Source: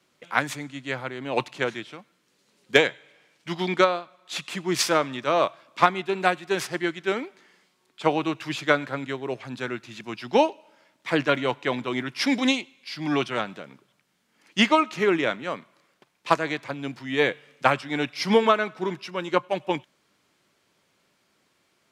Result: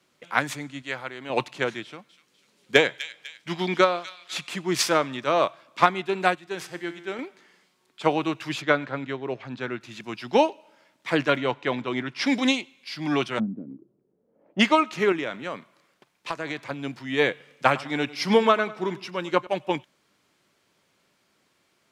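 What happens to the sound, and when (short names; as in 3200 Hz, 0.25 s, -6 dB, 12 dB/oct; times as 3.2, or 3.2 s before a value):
0.82–1.3 low shelf 420 Hz -9 dB
1.84–4.51 thin delay 0.249 s, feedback 46%, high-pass 2600 Hz, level -9.5 dB
6.35–7.19 resonator 86 Hz, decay 1.2 s
8.62–9.81 air absorption 120 m
11.37–12.26 air absorption 68 m
13.38–14.59 synth low-pass 210 Hz -> 670 Hz, resonance Q 5.6
15.12–16.71 compressor, threshold -25 dBFS
17.3–19.47 feedback echo 99 ms, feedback 40%, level -19 dB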